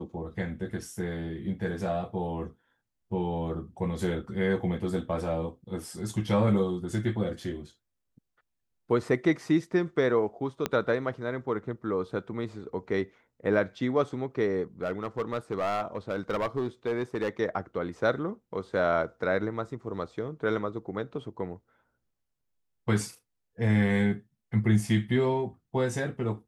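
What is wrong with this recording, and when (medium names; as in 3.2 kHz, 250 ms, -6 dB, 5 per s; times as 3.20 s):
10.66 s: pop -12 dBFS
14.83–17.29 s: clipped -24 dBFS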